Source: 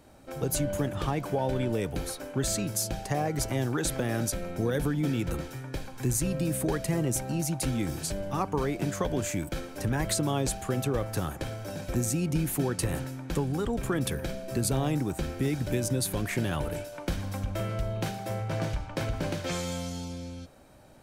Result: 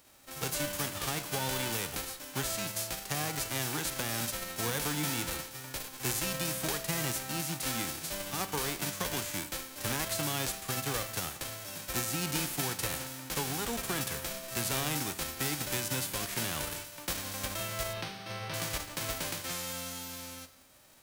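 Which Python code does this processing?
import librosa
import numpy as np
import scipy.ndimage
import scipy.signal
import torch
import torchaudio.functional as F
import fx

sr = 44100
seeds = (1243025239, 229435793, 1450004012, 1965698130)

y = fx.envelope_flatten(x, sr, power=0.3)
y = fx.savgol(y, sr, points=15, at=(17.93, 18.54))
y = fx.rev_schroeder(y, sr, rt60_s=0.88, comb_ms=27, drr_db=13.0)
y = y * librosa.db_to_amplitude(-5.5)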